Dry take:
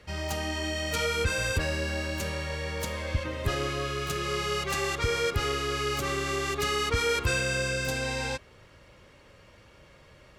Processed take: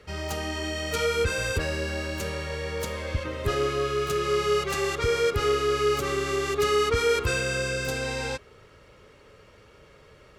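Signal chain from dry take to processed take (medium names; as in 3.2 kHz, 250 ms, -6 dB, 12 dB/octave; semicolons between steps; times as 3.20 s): small resonant body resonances 430/1300 Hz, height 11 dB, ringing for 55 ms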